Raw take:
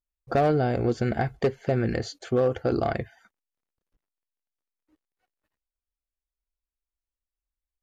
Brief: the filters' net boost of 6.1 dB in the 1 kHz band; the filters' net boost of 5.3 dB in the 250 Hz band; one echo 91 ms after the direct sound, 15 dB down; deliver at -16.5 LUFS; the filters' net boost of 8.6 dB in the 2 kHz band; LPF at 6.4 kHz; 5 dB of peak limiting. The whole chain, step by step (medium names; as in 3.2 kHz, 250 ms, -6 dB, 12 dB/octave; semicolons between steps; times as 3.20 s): low-pass 6.4 kHz; peaking EQ 250 Hz +6 dB; peaking EQ 1 kHz +8 dB; peaking EQ 2 kHz +8 dB; peak limiter -11.5 dBFS; delay 91 ms -15 dB; trim +7 dB